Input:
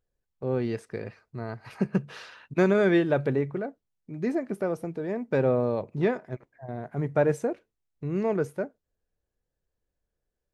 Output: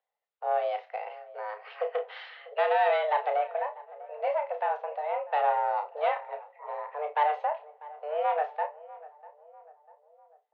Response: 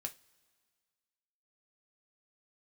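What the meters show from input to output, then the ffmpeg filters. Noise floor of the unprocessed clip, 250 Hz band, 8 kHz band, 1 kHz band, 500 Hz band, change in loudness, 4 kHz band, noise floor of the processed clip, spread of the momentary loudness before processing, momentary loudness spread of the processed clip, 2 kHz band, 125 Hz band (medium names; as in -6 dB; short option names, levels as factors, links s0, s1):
-84 dBFS, under -40 dB, no reading, +11.5 dB, -3.0 dB, -2.0 dB, +1.5 dB, -72 dBFS, 15 LU, 16 LU, -1.0 dB, under -40 dB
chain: -filter_complex "[0:a]asoftclip=type=tanh:threshold=0.106,asplit=2[s0][s1];[s1]adelay=646,lowpass=f=1200:p=1,volume=0.119,asplit=2[s2][s3];[s3]adelay=646,lowpass=f=1200:p=1,volume=0.5,asplit=2[s4][s5];[s5]adelay=646,lowpass=f=1200:p=1,volume=0.5,asplit=2[s6][s7];[s7]adelay=646,lowpass=f=1200:p=1,volume=0.5[s8];[s0][s2][s4][s6][s8]amix=inputs=5:normalize=0,asplit=2[s9][s10];[1:a]atrim=start_sample=2205,adelay=31[s11];[s10][s11]afir=irnorm=-1:irlink=0,volume=0.596[s12];[s9][s12]amix=inputs=2:normalize=0,highpass=f=190:t=q:w=0.5412,highpass=f=190:t=q:w=1.307,lowpass=f=3500:t=q:w=0.5176,lowpass=f=3500:t=q:w=0.7071,lowpass=f=3500:t=q:w=1.932,afreqshift=300"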